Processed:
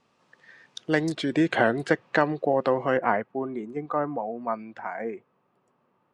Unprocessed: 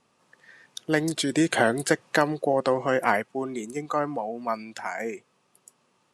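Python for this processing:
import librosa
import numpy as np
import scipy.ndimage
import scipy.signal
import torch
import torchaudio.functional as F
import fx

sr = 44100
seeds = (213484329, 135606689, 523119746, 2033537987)

y = fx.lowpass(x, sr, hz=fx.steps((0.0, 5500.0), (1.15, 3000.0), (2.97, 1500.0)), slope=12)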